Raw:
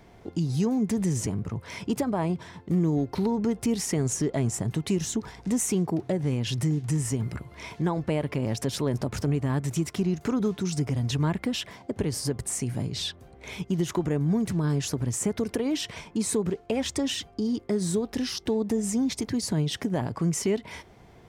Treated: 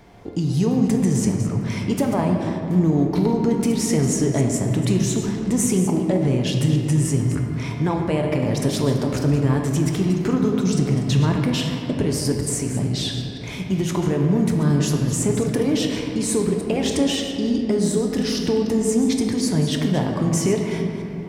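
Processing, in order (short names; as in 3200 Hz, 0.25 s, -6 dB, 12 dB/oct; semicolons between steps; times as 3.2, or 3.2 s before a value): reverse delay 0.147 s, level -11 dB; shoebox room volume 130 m³, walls hard, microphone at 0.32 m; gain +4 dB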